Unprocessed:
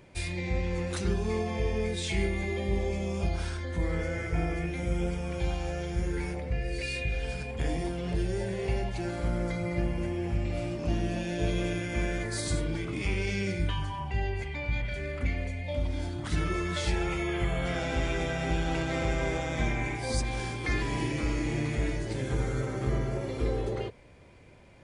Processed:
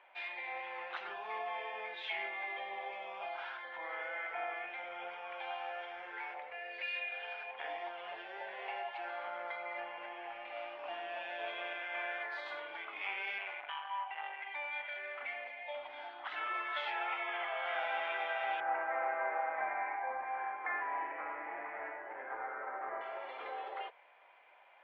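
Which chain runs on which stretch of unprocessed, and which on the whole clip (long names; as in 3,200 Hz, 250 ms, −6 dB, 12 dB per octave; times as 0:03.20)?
0:13.38–0:14.47: high-pass filter 440 Hz 6 dB per octave + high shelf with overshoot 3,600 Hz −6.5 dB, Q 1.5 + saturating transformer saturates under 940 Hz
0:18.60–0:23.01: Butterworth low-pass 2,000 Hz + low-shelf EQ 440 Hz +5 dB
whole clip: elliptic band-pass filter 760–3,200 Hz, stop band 70 dB; spectral tilt −3 dB per octave; level +2 dB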